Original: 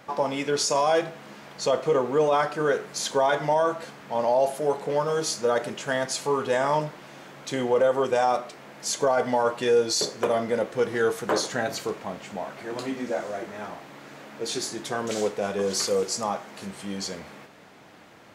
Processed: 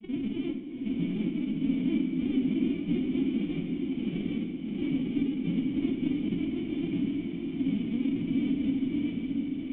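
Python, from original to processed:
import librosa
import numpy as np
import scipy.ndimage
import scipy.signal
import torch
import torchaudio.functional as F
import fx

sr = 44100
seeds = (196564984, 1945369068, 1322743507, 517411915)

y = np.r_[np.sort(x[:len(x) // 256 * 256].reshape(-1, 256), axis=1).ravel(), x[len(x) // 256 * 256:]]
y = fx.granulator(y, sr, seeds[0], grain_ms=100.0, per_s=20.0, spray_ms=100.0, spread_st=7)
y = fx.rider(y, sr, range_db=5, speed_s=0.5)
y = 10.0 ** (-17.0 / 20.0) * np.tanh(y / 10.0 ** (-17.0 / 20.0))
y = fx.stretch_grains(y, sr, factor=0.53, grain_ms=32.0)
y = fx.dynamic_eq(y, sr, hz=540.0, q=1.3, threshold_db=-41.0, ratio=4.0, max_db=-4)
y = fx.pitch_keep_formants(y, sr, semitones=8.5)
y = fx.formant_cascade(y, sr, vowel='i')
y = fx.echo_diffused(y, sr, ms=730, feedback_pct=49, wet_db=-3.0)
y = fx.room_shoebox(y, sr, seeds[1], volume_m3=440.0, walls='mixed', distance_m=0.73)
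y = y * librosa.db_to_amplitude(4.5)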